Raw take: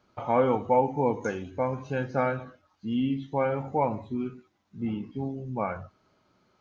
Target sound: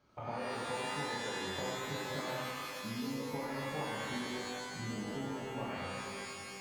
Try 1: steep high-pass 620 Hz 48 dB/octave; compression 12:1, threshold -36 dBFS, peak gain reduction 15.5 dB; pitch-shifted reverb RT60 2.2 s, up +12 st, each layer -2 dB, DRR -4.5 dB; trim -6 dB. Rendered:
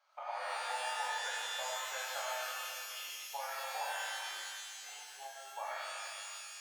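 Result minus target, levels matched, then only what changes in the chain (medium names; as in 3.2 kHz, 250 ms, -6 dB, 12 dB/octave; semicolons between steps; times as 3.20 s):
500 Hz band -5.5 dB
remove: steep high-pass 620 Hz 48 dB/octave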